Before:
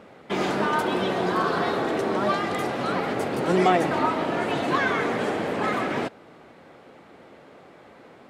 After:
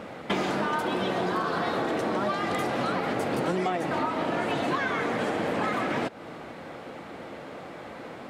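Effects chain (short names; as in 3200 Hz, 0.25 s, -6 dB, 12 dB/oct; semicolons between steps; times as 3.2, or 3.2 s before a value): notch 400 Hz, Q 12; compressor 10:1, threshold -33 dBFS, peak gain reduction 18 dB; gain +8.5 dB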